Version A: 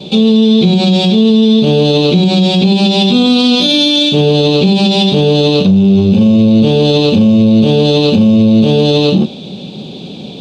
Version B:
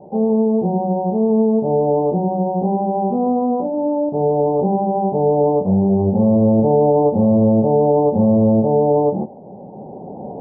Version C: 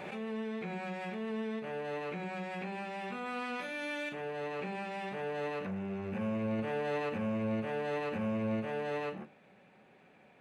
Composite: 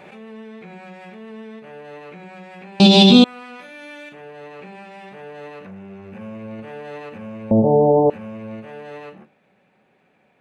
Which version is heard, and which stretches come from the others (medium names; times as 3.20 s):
C
2.80–3.24 s: from A
7.51–8.10 s: from B